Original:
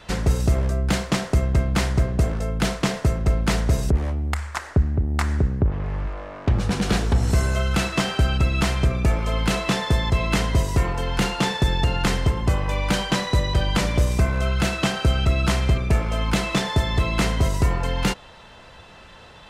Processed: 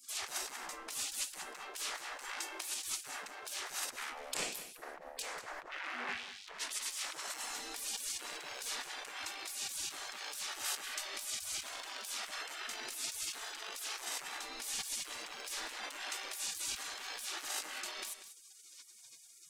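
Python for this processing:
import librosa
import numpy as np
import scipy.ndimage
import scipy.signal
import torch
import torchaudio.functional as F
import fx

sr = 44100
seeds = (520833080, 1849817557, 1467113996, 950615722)

p1 = np.clip(x, -10.0 ** (-15.0 / 20.0), 10.0 ** (-15.0 / 20.0))
p2 = fx.hum_notches(p1, sr, base_hz=50, count=4, at=(15.49, 16.86), fade=0.02)
p3 = fx.over_compress(p2, sr, threshold_db=-28.0, ratio=-1.0)
p4 = fx.spec_gate(p3, sr, threshold_db=-30, keep='weak')
p5 = p4 + fx.echo_single(p4, sr, ms=191, db=-12.0, dry=0)
y = F.gain(torch.from_numpy(p5), 5.0).numpy()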